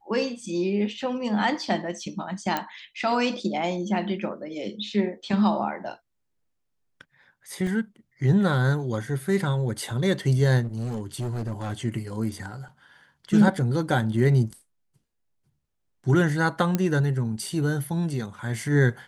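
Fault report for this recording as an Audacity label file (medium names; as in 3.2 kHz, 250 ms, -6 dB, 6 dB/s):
2.570000	2.570000	pop -11 dBFS
7.670000	7.670000	dropout 2.3 ms
10.630000	11.740000	clipped -25.5 dBFS
16.750000	16.750000	pop -10 dBFS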